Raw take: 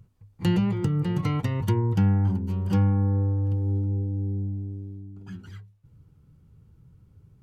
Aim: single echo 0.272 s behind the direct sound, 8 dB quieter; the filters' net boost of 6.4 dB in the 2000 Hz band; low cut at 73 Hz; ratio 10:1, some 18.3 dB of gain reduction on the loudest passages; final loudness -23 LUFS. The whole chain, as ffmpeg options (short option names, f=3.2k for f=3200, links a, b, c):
-af "highpass=73,equalizer=f=2k:t=o:g=7.5,acompressor=threshold=-37dB:ratio=10,aecho=1:1:272:0.398,volume=17dB"